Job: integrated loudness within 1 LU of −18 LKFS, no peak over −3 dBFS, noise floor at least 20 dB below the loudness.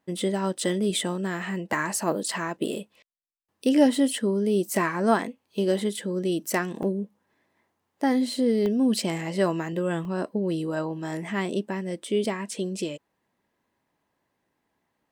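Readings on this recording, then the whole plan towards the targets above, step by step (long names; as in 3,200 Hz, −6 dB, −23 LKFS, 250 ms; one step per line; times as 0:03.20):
number of dropouts 5; longest dropout 1.5 ms; integrated loudness −26.5 LKFS; sample peak −7.5 dBFS; target loudness −18.0 LKFS
→ repair the gap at 0:02.48/0:04.18/0:06.83/0:08.66/0:10.05, 1.5 ms
level +8.5 dB
brickwall limiter −3 dBFS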